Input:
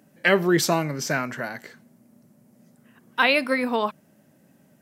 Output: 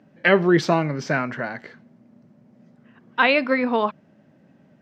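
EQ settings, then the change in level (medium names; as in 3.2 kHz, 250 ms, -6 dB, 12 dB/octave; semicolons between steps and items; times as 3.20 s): distance through air 210 m; +3.5 dB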